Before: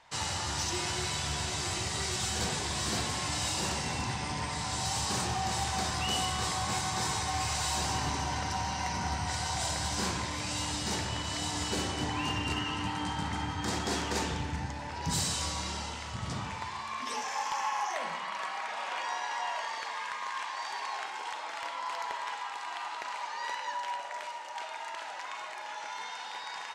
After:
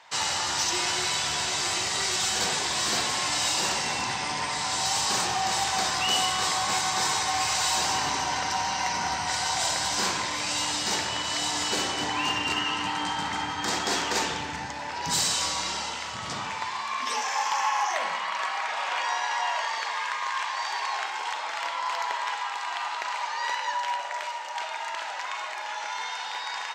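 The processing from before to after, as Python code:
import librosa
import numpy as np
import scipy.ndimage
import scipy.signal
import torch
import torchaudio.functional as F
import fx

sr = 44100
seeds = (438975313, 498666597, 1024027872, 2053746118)

y = fx.highpass(x, sr, hz=620.0, slope=6)
y = fx.peak_eq(y, sr, hz=10000.0, db=-13.5, octaves=0.21)
y = y * librosa.db_to_amplitude(8.0)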